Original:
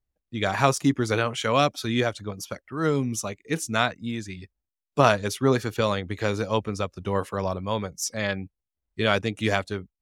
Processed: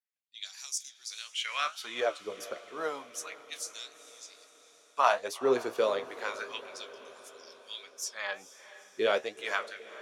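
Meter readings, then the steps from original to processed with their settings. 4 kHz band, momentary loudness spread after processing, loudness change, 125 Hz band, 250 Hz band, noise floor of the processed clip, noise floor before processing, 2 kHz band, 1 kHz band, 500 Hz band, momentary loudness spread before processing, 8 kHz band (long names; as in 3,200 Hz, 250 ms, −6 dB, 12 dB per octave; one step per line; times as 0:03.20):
−6.0 dB, 20 LU, −8.0 dB, below −30 dB, −18.0 dB, −61 dBFS, below −85 dBFS, −7.5 dB, −7.0 dB, −7.0 dB, 13 LU, −5.5 dB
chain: auto-filter high-pass sine 0.31 Hz 400–6,100 Hz
flanger 1.5 Hz, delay 9.2 ms, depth 9.7 ms, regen +53%
feedback delay with all-pass diffusion 457 ms, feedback 59%, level −15.5 dB
level −4 dB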